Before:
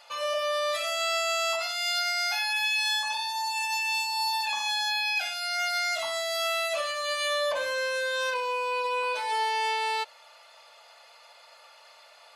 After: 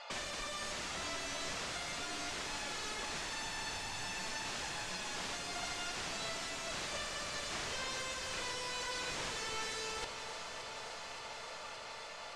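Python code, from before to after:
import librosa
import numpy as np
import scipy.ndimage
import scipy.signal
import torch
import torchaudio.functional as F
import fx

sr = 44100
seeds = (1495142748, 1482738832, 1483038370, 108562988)

y = fx.dynamic_eq(x, sr, hz=600.0, q=3.0, threshold_db=-41.0, ratio=4.0, max_db=4)
y = (np.mod(10.0 ** (35.5 / 20.0) * y + 1.0, 2.0) - 1.0) / 10.0 ** (35.5 / 20.0)
y = scipy.signal.sosfilt(scipy.signal.butter(4, 7600.0, 'lowpass', fs=sr, output='sos'), y)
y = fx.high_shelf(y, sr, hz=4100.0, db=-8.5)
y = fx.echo_alternate(y, sr, ms=286, hz=1600.0, feedback_pct=90, wet_db=-9)
y = y * 10.0 ** (5.5 / 20.0)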